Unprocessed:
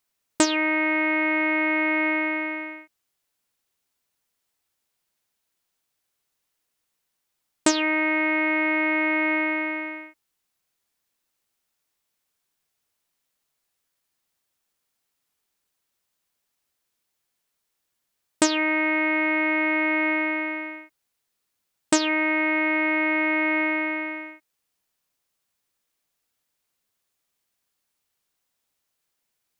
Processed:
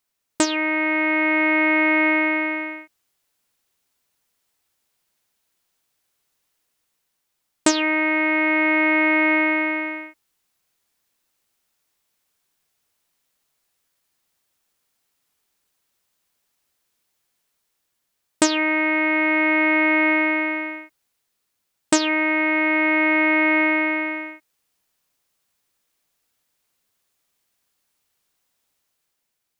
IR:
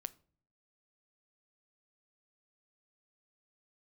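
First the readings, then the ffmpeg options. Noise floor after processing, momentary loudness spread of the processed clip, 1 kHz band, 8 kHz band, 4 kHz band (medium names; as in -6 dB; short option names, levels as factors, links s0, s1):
-76 dBFS, 10 LU, +3.5 dB, +2.0 dB, +2.0 dB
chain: -af "dynaudnorm=f=180:g=9:m=1.78"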